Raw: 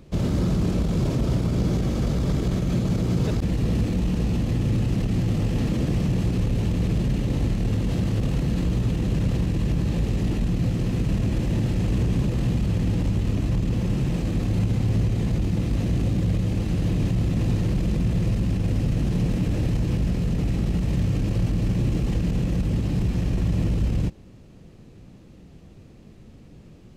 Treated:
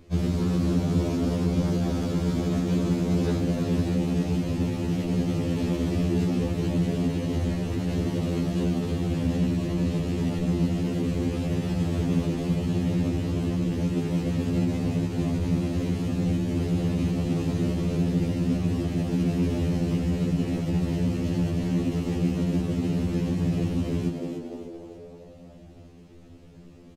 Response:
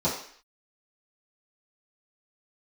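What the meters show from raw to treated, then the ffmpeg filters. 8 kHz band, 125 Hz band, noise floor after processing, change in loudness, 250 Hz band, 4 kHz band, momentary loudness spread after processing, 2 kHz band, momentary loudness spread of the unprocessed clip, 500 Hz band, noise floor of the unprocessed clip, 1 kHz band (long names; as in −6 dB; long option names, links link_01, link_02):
−1.0 dB, −4.0 dB, −47 dBFS, −2.0 dB, +1.0 dB, −1.0 dB, 3 LU, −1.5 dB, 1 LU, +2.0 dB, −47 dBFS, +0.5 dB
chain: -filter_complex "[0:a]asplit=7[link_01][link_02][link_03][link_04][link_05][link_06][link_07];[link_02]adelay=294,afreqshift=92,volume=-6dB[link_08];[link_03]adelay=588,afreqshift=184,volume=-12.6dB[link_09];[link_04]adelay=882,afreqshift=276,volume=-19.1dB[link_10];[link_05]adelay=1176,afreqshift=368,volume=-25.7dB[link_11];[link_06]adelay=1470,afreqshift=460,volume=-32.2dB[link_12];[link_07]adelay=1764,afreqshift=552,volume=-38.8dB[link_13];[link_01][link_08][link_09][link_10][link_11][link_12][link_13]amix=inputs=7:normalize=0,afftfilt=real='re*2*eq(mod(b,4),0)':imag='im*2*eq(mod(b,4),0)':win_size=2048:overlap=0.75"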